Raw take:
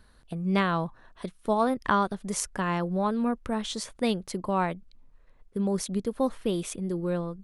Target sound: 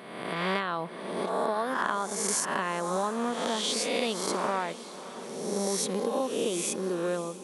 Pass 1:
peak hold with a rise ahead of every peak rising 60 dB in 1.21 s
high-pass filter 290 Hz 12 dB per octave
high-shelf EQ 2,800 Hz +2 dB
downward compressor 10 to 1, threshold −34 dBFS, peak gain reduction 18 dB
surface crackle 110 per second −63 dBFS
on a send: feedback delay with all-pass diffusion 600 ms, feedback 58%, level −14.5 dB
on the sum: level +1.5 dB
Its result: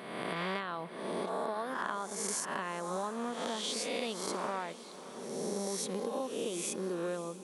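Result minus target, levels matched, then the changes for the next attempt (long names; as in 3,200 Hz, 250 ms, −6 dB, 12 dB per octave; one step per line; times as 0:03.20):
downward compressor: peak gain reduction +7 dB
change: downward compressor 10 to 1, threshold −26 dBFS, peak gain reduction 10.5 dB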